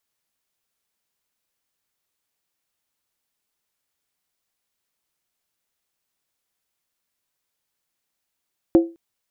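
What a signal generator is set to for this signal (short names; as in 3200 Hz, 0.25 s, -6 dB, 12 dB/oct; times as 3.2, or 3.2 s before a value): skin hit length 0.21 s, lowest mode 334 Hz, decay 0.29 s, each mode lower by 10.5 dB, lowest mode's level -6.5 dB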